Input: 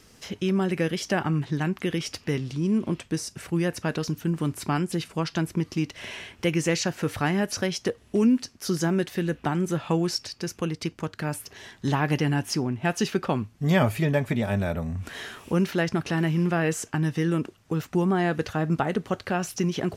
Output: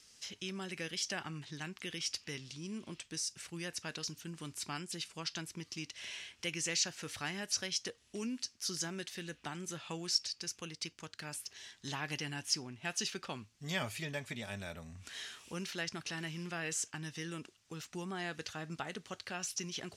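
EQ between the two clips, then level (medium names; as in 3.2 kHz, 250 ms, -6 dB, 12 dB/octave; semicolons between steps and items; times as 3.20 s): distance through air 96 m; pre-emphasis filter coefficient 0.9; treble shelf 3 kHz +8 dB; 0.0 dB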